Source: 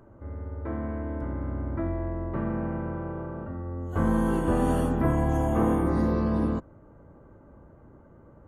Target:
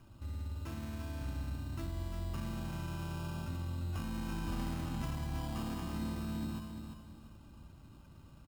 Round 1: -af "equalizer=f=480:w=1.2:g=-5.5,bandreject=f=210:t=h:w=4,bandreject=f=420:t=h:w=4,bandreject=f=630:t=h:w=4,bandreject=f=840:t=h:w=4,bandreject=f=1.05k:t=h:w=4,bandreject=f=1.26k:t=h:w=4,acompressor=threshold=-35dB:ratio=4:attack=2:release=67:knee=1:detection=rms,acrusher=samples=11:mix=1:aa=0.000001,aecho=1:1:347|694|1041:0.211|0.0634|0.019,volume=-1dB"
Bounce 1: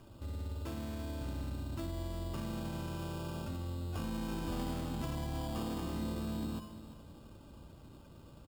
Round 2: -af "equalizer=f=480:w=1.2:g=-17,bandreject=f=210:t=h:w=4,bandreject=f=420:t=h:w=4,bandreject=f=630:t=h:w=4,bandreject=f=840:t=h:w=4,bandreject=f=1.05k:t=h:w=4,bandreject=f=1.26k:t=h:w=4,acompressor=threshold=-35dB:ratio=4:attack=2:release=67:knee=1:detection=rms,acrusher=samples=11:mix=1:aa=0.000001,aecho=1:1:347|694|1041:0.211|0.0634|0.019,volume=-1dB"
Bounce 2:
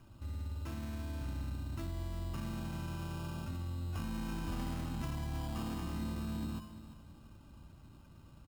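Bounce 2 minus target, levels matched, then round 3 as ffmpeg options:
echo-to-direct -6.5 dB
-af "equalizer=f=480:w=1.2:g=-17,bandreject=f=210:t=h:w=4,bandreject=f=420:t=h:w=4,bandreject=f=630:t=h:w=4,bandreject=f=840:t=h:w=4,bandreject=f=1.05k:t=h:w=4,bandreject=f=1.26k:t=h:w=4,acompressor=threshold=-35dB:ratio=4:attack=2:release=67:knee=1:detection=rms,acrusher=samples=11:mix=1:aa=0.000001,aecho=1:1:347|694|1041|1388:0.447|0.134|0.0402|0.0121,volume=-1dB"

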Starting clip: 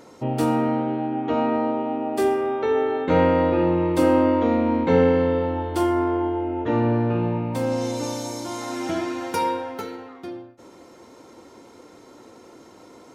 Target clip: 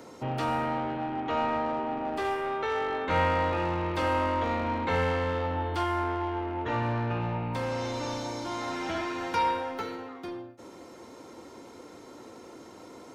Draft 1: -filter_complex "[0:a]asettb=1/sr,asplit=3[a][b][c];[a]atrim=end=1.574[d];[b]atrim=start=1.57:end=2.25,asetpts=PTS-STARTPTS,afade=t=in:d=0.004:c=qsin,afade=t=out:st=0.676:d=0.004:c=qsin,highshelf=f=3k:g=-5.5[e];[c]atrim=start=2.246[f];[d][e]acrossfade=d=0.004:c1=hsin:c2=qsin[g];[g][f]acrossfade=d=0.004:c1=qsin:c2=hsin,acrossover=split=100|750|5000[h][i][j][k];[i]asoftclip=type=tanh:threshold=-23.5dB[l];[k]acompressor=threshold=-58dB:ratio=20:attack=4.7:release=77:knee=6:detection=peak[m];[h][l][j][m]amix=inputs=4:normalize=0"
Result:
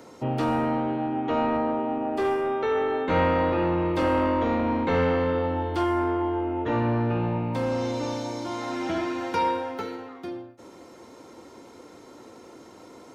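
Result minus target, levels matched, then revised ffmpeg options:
soft clip: distortion -6 dB
-filter_complex "[0:a]asettb=1/sr,asplit=3[a][b][c];[a]atrim=end=1.574[d];[b]atrim=start=1.57:end=2.25,asetpts=PTS-STARTPTS,afade=t=in:d=0.004:c=qsin,afade=t=out:st=0.676:d=0.004:c=qsin,highshelf=f=3k:g=-5.5[e];[c]atrim=start=2.246[f];[d][e]acrossfade=d=0.004:c1=hsin:c2=qsin[g];[g][f]acrossfade=d=0.004:c1=qsin:c2=hsin,acrossover=split=100|750|5000[h][i][j][k];[i]asoftclip=type=tanh:threshold=-35dB[l];[k]acompressor=threshold=-58dB:ratio=20:attack=4.7:release=77:knee=6:detection=peak[m];[h][l][j][m]amix=inputs=4:normalize=0"

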